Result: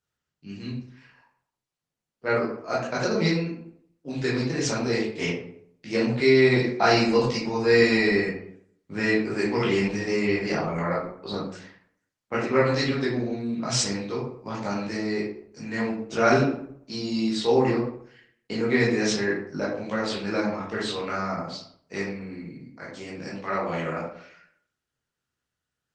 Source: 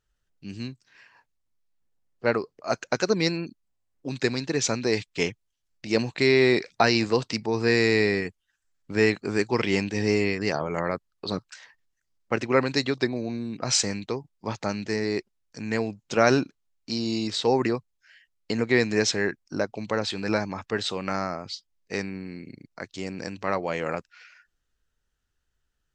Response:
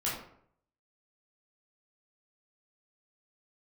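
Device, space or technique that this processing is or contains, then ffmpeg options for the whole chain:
far-field microphone of a smart speaker: -filter_complex "[1:a]atrim=start_sample=2205[s0];[0:a][s0]afir=irnorm=-1:irlink=0,highpass=f=92:w=0.5412,highpass=f=92:w=1.3066,dynaudnorm=f=390:g=21:m=1.58,volume=0.562" -ar 48000 -c:a libopus -b:a 20k

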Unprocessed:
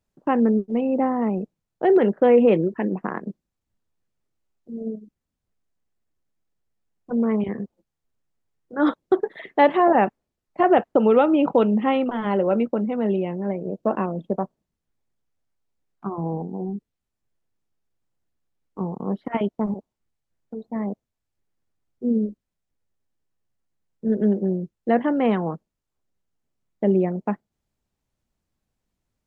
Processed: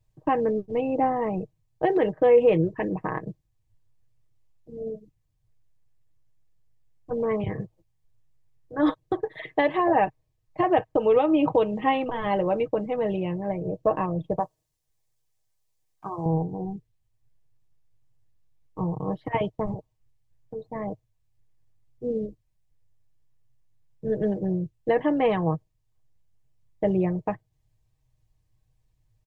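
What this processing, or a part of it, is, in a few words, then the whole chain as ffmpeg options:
car stereo with a boomy subwoofer: -filter_complex "[0:a]lowshelf=f=150:t=q:w=3:g=10.5,alimiter=limit=0.237:level=0:latency=1:release=313,bandreject=f=1400:w=5.2,aecho=1:1:6.4:0.56,asettb=1/sr,asplit=3[s0][s1][s2];[s0]atrim=end=14.404[s3];[s1]atrim=start=14.4:end=16.26,asetpts=PTS-STARTPTS,afade=t=in:d=0.004:c=qsin,afade=t=out:st=1.856:d=0.004:c=qsin,bass=f=250:g=-12,treble=f=4000:g=9[s4];[s2]atrim=start=16.256[s5];[s3][s4]acrossfade=d=0.004:c1=hsin:c2=qsin[s6];[s6][s5]acrossfade=d=0.004:c1=qsin:c2=hsin"

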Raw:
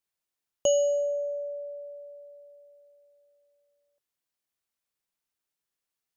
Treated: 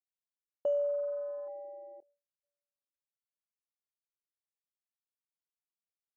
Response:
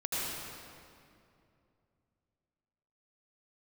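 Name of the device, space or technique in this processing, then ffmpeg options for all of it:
hearing-loss simulation: -filter_complex "[0:a]asettb=1/sr,asplit=3[s0][s1][s2];[s0]atrim=end=2.004[s3];[s1]atrim=start=2:end=2.43,asetpts=PTS-STARTPTS,afade=t=in:d=0.004:c=qsin,afade=t=out:st=0.426:d=0.004:c=qsin,agate=range=0.0224:threshold=0.01:ratio=3:detection=peak[s4];[s2]atrim=start=2.426[s5];[s3][s4]acrossfade=d=0.004:c1=hsin:c2=qsin[s6];[s6][s5]acrossfade=d=0.004:c1=qsin:c2=hsin,afwtdn=0.02,lowpass=1800,agate=range=0.0224:threshold=0.00158:ratio=3:detection=peak,volume=0.473"

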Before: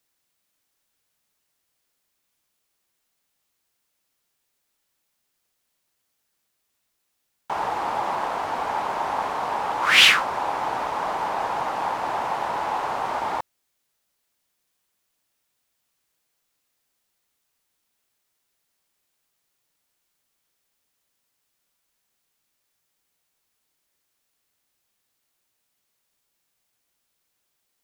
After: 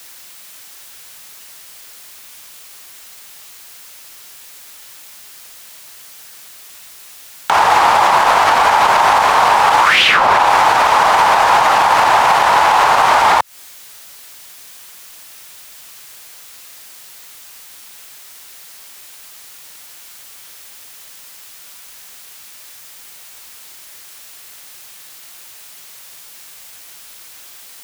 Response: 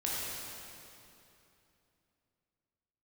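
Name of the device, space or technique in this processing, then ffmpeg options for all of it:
mastering chain: -filter_complex "[0:a]equalizer=f=280:t=o:w=0.77:g=-2,acrossover=split=140|770|4700[s0][s1][s2][s3];[s0]acompressor=threshold=0.00178:ratio=4[s4];[s1]acompressor=threshold=0.00794:ratio=4[s5];[s2]acompressor=threshold=0.02:ratio=4[s6];[s3]acompressor=threshold=0.00158:ratio=4[s7];[s4][s5][s6][s7]amix=inputs=4:normalize=0,acompressor=threshold=0.01:ratio=6,tiltshelf=f=710:g=-4.5,alimiter=level_in=47.3:limit=0.891:release=50:level=0:latency=1,volume=0.891"

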